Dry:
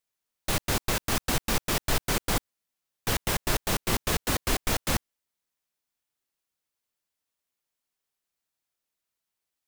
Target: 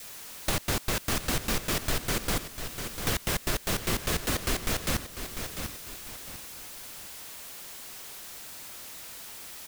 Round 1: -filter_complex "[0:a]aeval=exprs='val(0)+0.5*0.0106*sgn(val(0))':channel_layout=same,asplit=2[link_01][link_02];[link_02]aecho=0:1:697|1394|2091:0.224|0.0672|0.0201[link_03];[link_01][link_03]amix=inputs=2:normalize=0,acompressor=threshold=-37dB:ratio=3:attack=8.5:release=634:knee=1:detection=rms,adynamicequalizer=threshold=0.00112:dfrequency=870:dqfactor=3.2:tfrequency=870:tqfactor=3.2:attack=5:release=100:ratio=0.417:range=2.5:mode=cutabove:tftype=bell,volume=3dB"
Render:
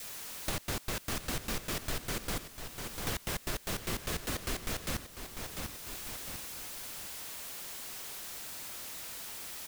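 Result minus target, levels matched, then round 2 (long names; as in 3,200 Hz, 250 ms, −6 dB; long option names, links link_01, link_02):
downward compressor: peak gain reduction +7 dB
-filter_complex "[0:a]aeval=exprs='val(0)+0.5*0.0106*sgn(val(0))':channel_layout=same,asplit=2[link_01][link_02];[link_02]aecho=0:1:697|1394|2091:0.224|0.0672|0.0201[link_03];[link_01][link_03]amix=inputs=2:normalize=0,acompressor=threshold=-26.5dB:ratio=3:attack=8.5:release=634:knee=1:detection=rms,adynamicequalizer=threshold=0.00112:dfrequency=870:dqfactor=3.2:tfrequency=870:tqfactor=3.2:attack=5:release=100:ratio=0.417:range=2.5:mode=cutabove:tftype=bell,volume=3dB"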